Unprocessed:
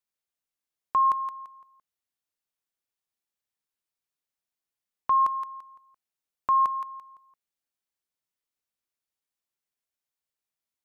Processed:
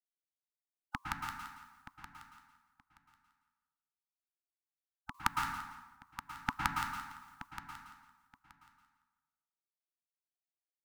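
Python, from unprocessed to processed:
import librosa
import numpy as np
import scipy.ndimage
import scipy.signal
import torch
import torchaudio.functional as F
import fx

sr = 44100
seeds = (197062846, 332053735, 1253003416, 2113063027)

y = scipy.signal.sosfilt(scipy.signal.cheby1(3, 1.0, [270.0, 920.0], 'bandstop', fs=sr, output='sos'), x)
y = fx.spec_gate(y, sr, threshold_db=-25, keep='weak')
y = fx.tremolo_random(y, sr, seeds[0], hz=3.5, depth_pct=85)
y = fx.echo_feedback(y, sr, ms=925, feedback_pct=17, wet_db=-13.0)
y = fx.rev_plate(y, sr, seeds[1], rt60_s=1.1, hf_ratio=0.6, predelay_ms=100, drr_db=0.0)
y = y * librosa.db_to_amplitude(17.0)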